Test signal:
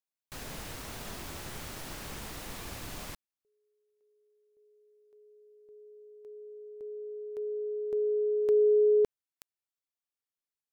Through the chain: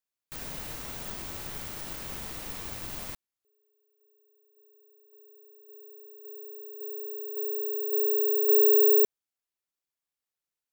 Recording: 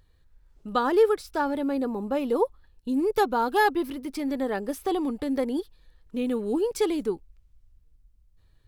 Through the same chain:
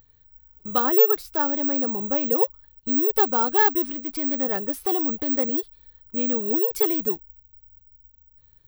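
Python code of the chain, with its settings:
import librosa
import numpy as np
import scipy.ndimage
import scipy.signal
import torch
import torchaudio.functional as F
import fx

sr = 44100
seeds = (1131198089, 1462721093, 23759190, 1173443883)

y = (np.kron(x[::2], np.eye(2)[0]) * 2)[:len(x)]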